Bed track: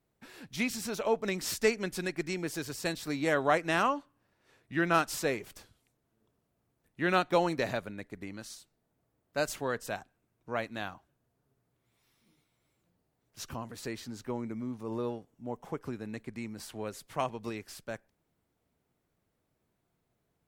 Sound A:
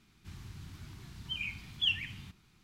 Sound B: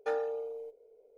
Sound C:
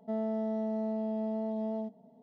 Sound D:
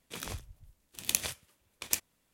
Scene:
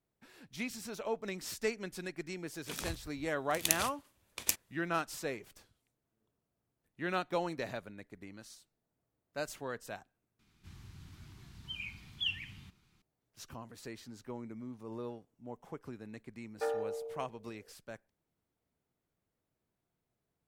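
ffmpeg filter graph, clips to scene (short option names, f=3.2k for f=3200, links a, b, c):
-filter_complex "[0:a]volume=-7.5dB,asplit=2[a][b];[a]atrim=end=10.394[c];[1:a]atrim=end=2.63,asetpts=PTS-STARTPTS,volume=-5dB[d];[b]atrim=start=13.016[e];[4:a]atrim=end=2.33,asetpts=PTS-STARTPTS,volume=-1dB,afade=t=in:d=0.004:c=hsin,afade=t=out:st=2.326:d=0.004:c=hsin,adelay=2560[f];[2:a]atrim=end=1.17,asetpts=PTS-STARTPTS,volume=-2.5dB,afade=t=in:d=0.004:c=hsin,afade=t=out:st=1.166:d=0.004:c=hsin,adelay=16550[g];[c][d]acrossfade=d=0.004:c1=hsin:c2=hsin[h];[h][e]acrossfade=d=0.004:c1=hsin:c2=hsin[i];[i][f][g]amix=inputs=3:normalize=0"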